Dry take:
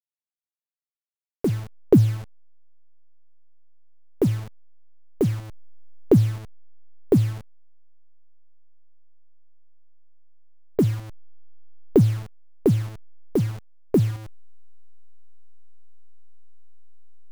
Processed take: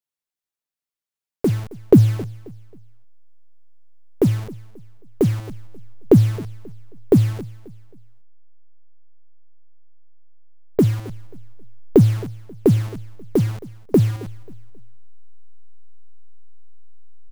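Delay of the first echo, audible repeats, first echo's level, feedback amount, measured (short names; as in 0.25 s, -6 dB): 0.268 s, 2, -20.0 dB, 34%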